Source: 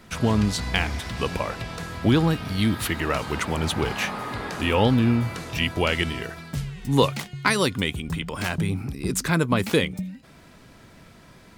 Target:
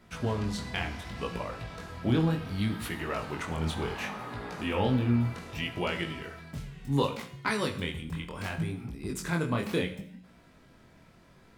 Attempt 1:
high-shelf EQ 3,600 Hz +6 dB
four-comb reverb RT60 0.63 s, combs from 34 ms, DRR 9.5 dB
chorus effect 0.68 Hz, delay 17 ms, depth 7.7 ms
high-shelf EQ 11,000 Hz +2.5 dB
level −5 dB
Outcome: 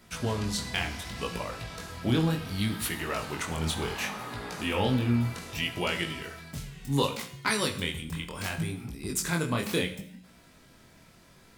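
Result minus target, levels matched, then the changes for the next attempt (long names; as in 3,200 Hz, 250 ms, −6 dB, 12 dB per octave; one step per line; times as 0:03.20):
8,000 Hz band +8.5 dB
change: first high-shelf EQ 3,600 Hz −6 dB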